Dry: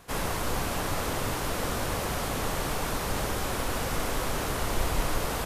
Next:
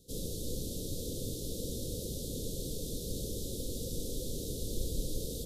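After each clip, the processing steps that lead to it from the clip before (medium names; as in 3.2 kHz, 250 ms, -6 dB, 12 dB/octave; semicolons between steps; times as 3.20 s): Chebyshev band-stop 510–3600 Hz, order 4; trim -5.5 dB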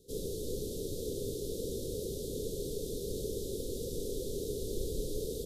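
peaking EQ 410 Hz +13 dB 0.45 oct; trim -3 dB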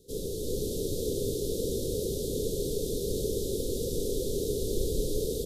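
level rider gain up to 3.5 dB; trim +3 dB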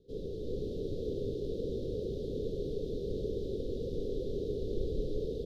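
distance through air 310 m; trim -4 dB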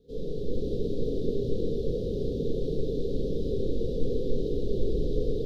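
simulated room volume 730 m³, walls mixed, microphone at 1.8 m; trim +1.5 dB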